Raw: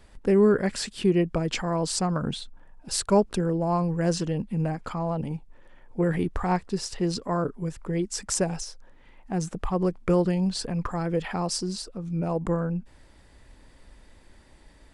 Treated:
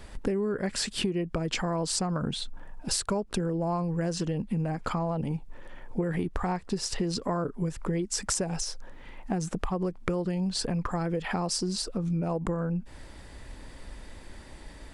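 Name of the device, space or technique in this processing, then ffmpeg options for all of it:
serial compression, leveller first: -af "acompressor=threshold=-25dB:ratio=2,acompressor=threshold=-35dB:ratio=5,volume=8dB"

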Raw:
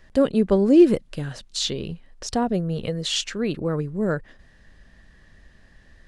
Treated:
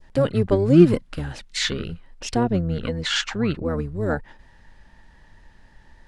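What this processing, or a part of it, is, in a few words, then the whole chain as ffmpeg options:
octave pedal: -filter_complex "[0:a]asettb=1/sr,asplit=3[a][b][c];[a]atrim=end=2.434[d];[b]atrim=start=2.43:end=3.68,asetpts=PTS-STARTPTS,afade=t=in:d=0.004:c=qsin,afade=t=out:st=1.246:d=0.004:c=qsin,lowpass=7.2k[e];[c]atrim=start=3.676[f];[d][e]acrossfade=d=0.004:c1=hsin:c2=qsin[g];[g][f]acrossfade=d=0.004:c1=qsin:c2=hsin,adynamicequalizer=threshold=0.0158:dfrequency=2100:dqfactor=0.81:tfrequency=2100:tqfactor=0.81:attack=5:release=100:ratio=0.375:range=1.5:mode=boostabove:tftype=bell,asplit=2[h][i];[i]asetrate=22050,aresample=44100,atempo=2,volume=-3dB[j];[h][j]amix=inputs=2:normalize=0,volume=-1dB"

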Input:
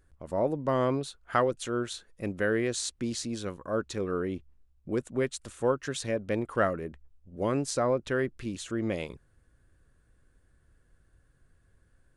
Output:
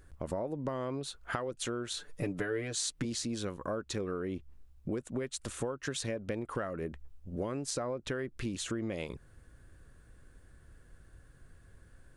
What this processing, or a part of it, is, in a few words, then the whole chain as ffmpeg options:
serial compression, leveller first: -filter_complex "[0:a]acompressor=threshold=-29dB:ratio=3,acompressor=threshold=-41dB:ratio=5,asettb=1/sr,asplit=3[a][b][c];[a]atrim=end=1.964[d];[b]atrim=start=1.96:end=3.05,asetpts=PTS-STARTPTS,afade=t=in:d=0.004:c=qsin,afade=t=out:st=1.086:d=0.004:c=qsin,aecho=1:1:6.8:0.74,atrim=end_sample=48069[e];[c]atrim=start=3.046[f];[d][e]acrossfade=d=0.004:c1=hsin:c2=qsin[g];[g][f]acrossfade=d=0.004:c1=qsin:c2=hsin,volume=7.5dB"

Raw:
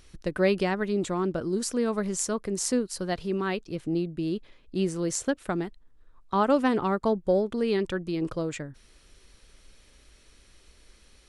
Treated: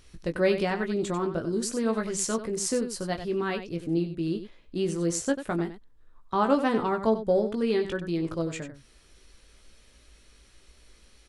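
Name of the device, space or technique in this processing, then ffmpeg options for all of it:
slapback doubling: -filter_complex "[0:a]asplit=3[a][b][c];[b]adelay=18,volume=-6dB[d];[c]adelay=94,volume=-10dB[e];[a][d][e]amix=inputs=3:normalize=0,asettb=1/sr,asplit=3[f][g][h];[f]atrim=end=1.934[i];[g]atrim=start=1.93:end=2.38,asetpts=PTS-STARTPTS,afade=t=in:d=0.004:c=qsin,afade=t=out:st=0.446:d=0.004:c=qsin,equalizer=f=3k:w=0.73:g=4.5[j];[h]atrim=start=2.376[k];[i][j]acrossfade=d=0.004:c1=hsin:c2=qsin[l];[l][k]acrossfade=d=0.004:c1=qsin:c2=hsin,volume=-1.5dB"

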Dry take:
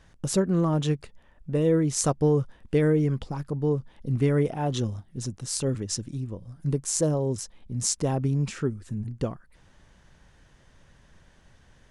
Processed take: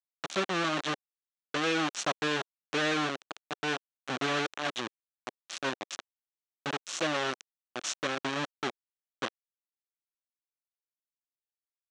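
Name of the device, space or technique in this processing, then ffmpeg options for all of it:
hand-held game console: -af "acrusher=bits=3:mix=0:aa=0.000001,highpass=440,equalizer=f=460:t=q:w=4:g=-10,equalizer=f=660:t=q:w=4:g=-3,equalizer=f=930:t=q:w=4:g=-6,equalizer=f=2.1k:t=q:w=4:g=-4,equalizer=f=4.9k:t=q:w=4:g=-8,lowpass=f=5.6k:w=0.5412,lowpass=f=5.6k:w=1.3066"

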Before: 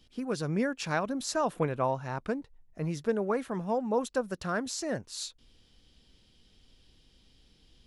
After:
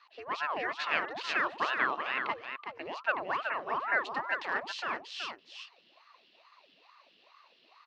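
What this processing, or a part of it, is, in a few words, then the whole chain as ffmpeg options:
voice changer toy: -filter_complex "[0:a]asettb=1/sr,asplit=3[a][b][c];[a]atrim=end=1.684[d];[b]atrim=start=1.68:end=2.82,asetpts=PTS-STARTPTS,afade=t=in:d=0.004:c=qsin,afade=t=out:st=1.136:d=0.004:c=qsin,equalizer=f=2.8k:t=o:w=1.6:g=5.5[e];[c]atrim=start=2.816[f];[d][e]acrossfade=d=0.004:c1=hsin:c2=qsin[g];[g][f]acrossfade=d=0.004:c1=qsin:c2=hsin,aeval=exprs='val(0)*sin(2*PI*690*n/s+690*0.75/2.3*sin(2*PI*2.3*n/s))':c=same,highpass=450,equalizer=f=480:t=q:w=4:g=-4,equalizer=f=810:t=q:w=4:g=-4,equalizer=f=1.1k:t=q:w=4:g=4,equalizer=f=1.8k:t=q:w=4:g=6,equalizer=f=2.7k:t=q:w=4:g=9,equalizer=f=4.2k:t=q:w=4:g=5,lowpass=f=4.5k:w=0.5412,lowpass=f=4.5k:w=1.3066,aecho=1:1:375:0.473"

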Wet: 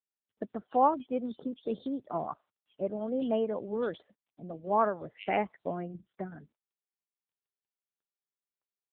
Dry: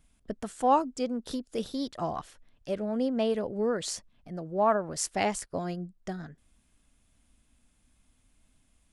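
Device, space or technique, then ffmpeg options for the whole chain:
mobile call with aggressive noise cancelling: -filter_complex "[0:a]highpass=170,acrossover=split=3100[a][b];[a]adelay=120[c];[c][b]amix=inputs=2:normalize=0,afftdn=nr=32:nf=-47" -ar 8000 -c:a libopencore_amrnb -b:a 7950

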